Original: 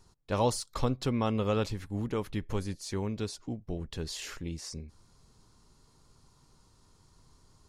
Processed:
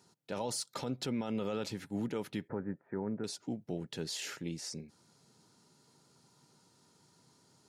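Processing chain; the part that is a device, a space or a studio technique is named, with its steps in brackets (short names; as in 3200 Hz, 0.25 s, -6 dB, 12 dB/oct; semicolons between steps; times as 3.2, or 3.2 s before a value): PA system with an anti-feedback notch (HPF 140 Hz 24 dB/oct; Butterworth band-stop 1100 Hz, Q 6.4; limiter -26.5 dBFS, peak gain reduction 11.5 dB); 2.48–3.24 steep low-pass 1800 Hz 48 dB/oct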